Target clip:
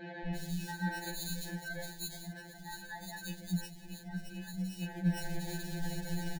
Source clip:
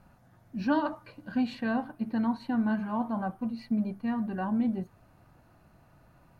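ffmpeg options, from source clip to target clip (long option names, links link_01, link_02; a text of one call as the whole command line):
ffmpeg -i in.wav -filter_complex "[0:a]aeval=exprs='val(0)+0.5*0.0075*sgn(val(0))':channel_layout=same,equalizer=frequency=460:width_type=o:width=1.6:gain=-10,bandreject=frequency=50:width_type=h:width=6,bandreject=frequency=100:width_type=h:width=6,bandreject=frequency=150:width_type=h:width=6,bandreject=frequency=200:width_type=h:width=6,aecho=1:1:5.1:0.55,areverse,acompressor=threshold=-43dB:ratio=12,areverse,acrusher=samples=16:mix=1:aa=0.000001,asuperstop=centerf=1200:order=12:qfactor=1.9,acrossover=split=230|2900[link_01][link_02][link_03];[link_01]adelay=240[link_04];[link_03]adelay=350[link_05];[link_04][link_02][link_05]amix=inputs=3:normalize=0,afftfilt=real='re*2.83*eq(mod(b,8),0)':imag='im*2.83*eq(mod(b,8),0)':win_size=2048:overlap=0.75,volume=15dB" out.wav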